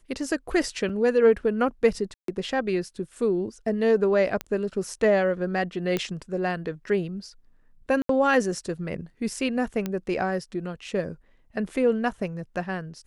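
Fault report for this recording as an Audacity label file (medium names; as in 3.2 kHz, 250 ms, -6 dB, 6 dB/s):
0.890000	0.900000	dropout 5.3 ms
2.140000	2.280000	dropout 143 ms
4.410000	4.410000	pop -14 dBFS
5.970000	5.970000	pop -13 dBFS
8.020000	8.090000	dropout 73 ms
9.860000	9.860000	pop -15 dBFS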